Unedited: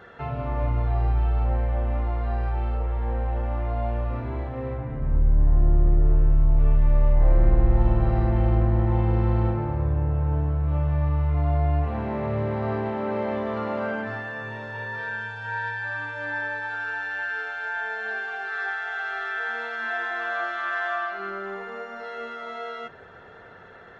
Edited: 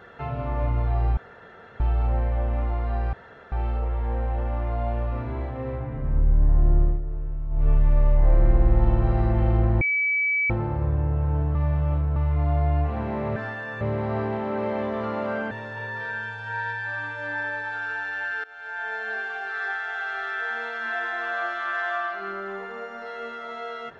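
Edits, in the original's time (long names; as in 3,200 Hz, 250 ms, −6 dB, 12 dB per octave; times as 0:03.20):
0:01.17: splice in room tone 0.63 s
0:02.50: splice in room tone 0.39 s
0:05.79–0:06.67: duck −11.5 dB, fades 0.20 s
0:08.79–0:09.48: beep over 2,290 Hz −20 dBFS
0:10.53–0:11.14: reverse
0:14.04–0:14.49: move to 0:12.34
0:17.42–0:17.91: fade in, from −19.5 dB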